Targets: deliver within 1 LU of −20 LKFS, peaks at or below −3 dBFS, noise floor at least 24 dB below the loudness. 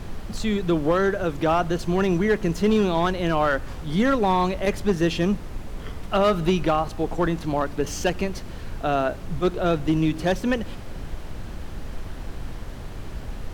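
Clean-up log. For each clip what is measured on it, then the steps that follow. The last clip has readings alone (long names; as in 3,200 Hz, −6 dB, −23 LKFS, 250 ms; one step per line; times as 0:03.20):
share of clipped samples 0.7%; peaks flattened at −13.0 dBFS; background noise floor −36 dBFS; target noise floor −48 dBFS; integrated loudness −23.5 LKFS; sample peak −13.0 dBFS; target loudness −20.0 LKFS
→ clipped peaks rebuilt −13 dBFS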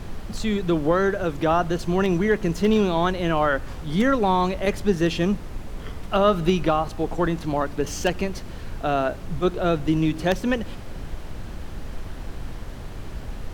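share of clipped samples 0.0%; background noise floor −36 dBFS; target noise floor −47 dBFS
→ noise reduction from a noise print 11 dB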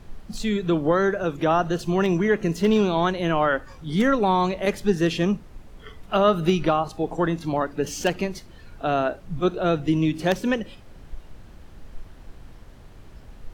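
background noise floor −46 dBFS; target noise floor −48 dBFS
→ noise reduction from a noise print 6 dB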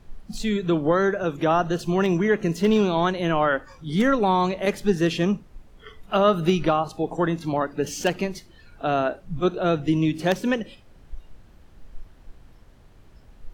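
background noise floor −51 dBFS; integrated loudness −23.5 LKFS; sample peak −4.5 dBFS; target loudness −20.0 LKFS
→ level +3.5 dB
brickwall limiter −3 dBFS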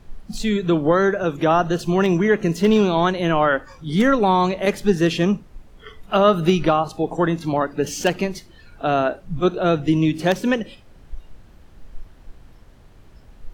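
integrated loudness −20.0 LKFS; sample peak −3.0 dBFS; background noise floor −48 dBFS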